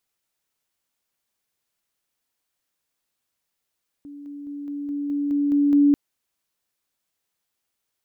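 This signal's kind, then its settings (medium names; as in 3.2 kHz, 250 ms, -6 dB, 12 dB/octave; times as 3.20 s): level ladder 287 Hz -36.5 dBFS, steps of 3 dB, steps 9, 0.21 s 0.00 s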